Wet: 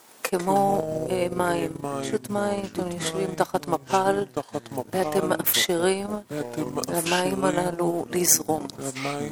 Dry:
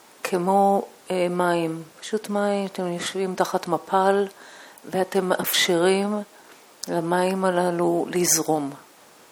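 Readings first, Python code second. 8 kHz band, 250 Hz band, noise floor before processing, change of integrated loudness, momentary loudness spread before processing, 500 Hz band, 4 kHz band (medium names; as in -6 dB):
+1.0 dB, -2.0 dB, -51 dBFS, -2.0 dB, 11 LU, -2.0 dB, -1.0 dB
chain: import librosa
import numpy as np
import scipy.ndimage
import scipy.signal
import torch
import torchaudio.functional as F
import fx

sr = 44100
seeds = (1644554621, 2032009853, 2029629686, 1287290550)

y = fx.echo_pitch(x, sr, ms=83, semitones=-4, count=3, db_per_echo=-6.0)
y = fx.high_shelf(y, sr, hz=8500.0, db=9.0)
y = fx.transient(y, sr, attack_db=3, sustain_db=-12)
y = F.gain(torch.from_numpy(y), -3.5).numpy()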